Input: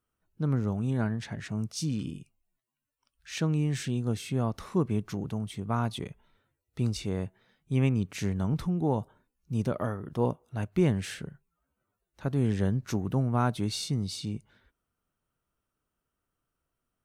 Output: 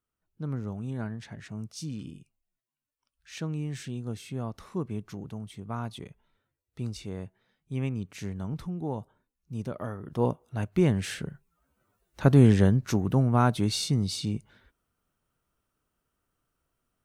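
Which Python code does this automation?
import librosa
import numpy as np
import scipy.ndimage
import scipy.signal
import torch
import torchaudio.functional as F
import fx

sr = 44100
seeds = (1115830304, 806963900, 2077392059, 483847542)

y = fx.gain(x, sr, db=fx.line((9.76, -5.5), (10.24, 1.5), (10.87, 1.5), (12.3, 11.0), (12.83, 4.0)))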